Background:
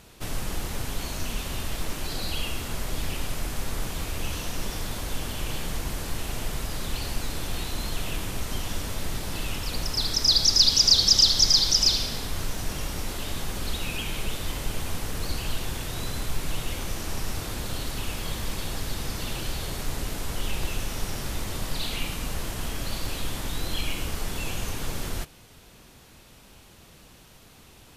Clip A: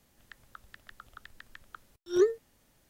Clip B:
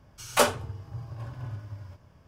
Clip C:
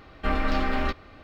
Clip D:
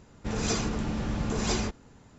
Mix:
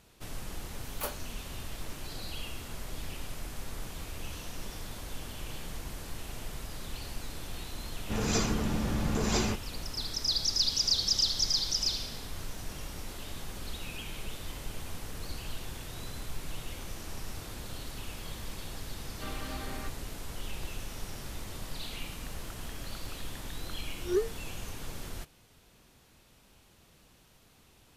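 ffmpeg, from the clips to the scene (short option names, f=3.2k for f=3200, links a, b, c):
-filter_complex "[0:a]volume=-9.5dB[a];[2:a]aexciter=amount=7.3:drive=4.4:freq=11k,atrim=end=2.27,asetpts=PTS-STARTPTS,volume=-17.5dB,afade=t=in:d=0.004:c=hsin,afade=t=out:st=2.266:d=0.004:c=hsin,adelay=640[b];[4:a]atrim=end=2.18,asetpts=PTS-STARTPTS,volume=-0.5dB,afade=t=in:d=0.004:c=hsin,afade=t=out:st=2.176:d=0.004:c=hsin,adelay=7850[c];[3:a]atrim=end=1.23,asetpts=PTS-STARTPTS,volume=-15dB,afade=t=in:d=0.004:c=hsin,afade=t=out:st=1.226:d=0.004:c=hsin,adelay=18970[d];[1:a]atrim=end=2.89,asetpts=PTS-STARTPTS,volume=-5dB,afade=t=in:d=0.004:c=hsin,afade=t=out:st=2.886:d=0.004:c=hsin,adelay=21950[e];[a][b][c][d][e]amix=inputs=5:normalize=0"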